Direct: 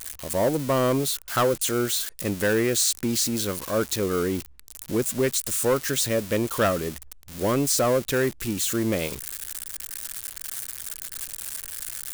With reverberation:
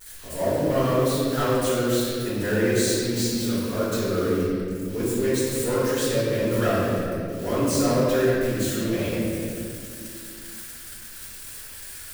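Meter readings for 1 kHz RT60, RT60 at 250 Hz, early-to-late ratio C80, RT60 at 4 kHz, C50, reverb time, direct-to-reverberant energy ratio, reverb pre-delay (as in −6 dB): 1.8 s, 3.4 s, −1.5 dB, 1.4 s, −3.5 dB, 2.3 s, −13.5 dB, 4 ms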